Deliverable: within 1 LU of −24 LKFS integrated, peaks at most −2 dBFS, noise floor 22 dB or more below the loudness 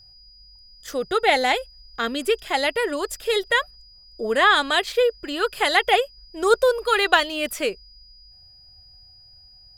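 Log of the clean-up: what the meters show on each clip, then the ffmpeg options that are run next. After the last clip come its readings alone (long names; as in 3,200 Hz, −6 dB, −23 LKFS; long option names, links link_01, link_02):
interfering tone 4,900 Hz; level of the tone −48 dBFS; integrated loudness −21.5 LKFS; sample peak −1.5 dBFS; target loudness −24.0 LKFS
→ -af "bandreject=frequency=4900:width=30"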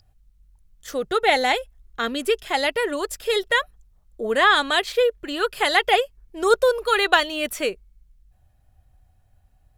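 interfering tone none found; integrated loudness −21.5 LKFS; sample peak −1.5 dBFS; target loudness −24.0 LKFS
→ -af "volume=-2.5dB"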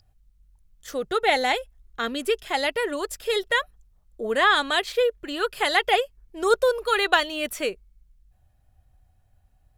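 integrated loudness −24.0 LKFS; sample peak −4.0 dBFS; background noise floor −63 dBFS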